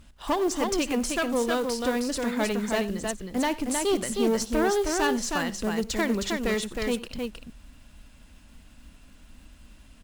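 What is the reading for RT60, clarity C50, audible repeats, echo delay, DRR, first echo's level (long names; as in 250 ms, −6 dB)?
no reverb audible, no reverb audible, 3, 58 ms, no reverb audible, −19.0 dB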